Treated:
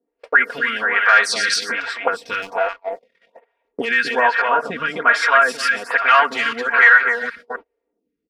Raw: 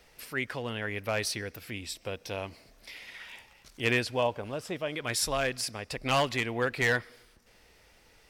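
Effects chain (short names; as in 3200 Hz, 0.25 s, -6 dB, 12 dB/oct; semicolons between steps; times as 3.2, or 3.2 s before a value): reverse delay 0.192 s, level -11.5 dB; comb 4.3 ms, depth 91%; in parallel at 0 dB: compressor 10:1, threshold -34 dBFS, peak gain reduction 16 dB; 1.08–1.64 on the sum: band shelf 5600 Hz +12.5 dB; auto-wah 280–1500 Hz, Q 5.4, up, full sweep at -26 dBFS; 2.42–3.01 power-law curve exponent 1.4; on a send: echo 0.263 s -6 dB; on the sum: gate -54 dBFS, range -33 dB; 4.42–5.13 tilt -2 dB/oct; maximiser +28 dB; photocell phaser 1.2 Hz; gain -1 dB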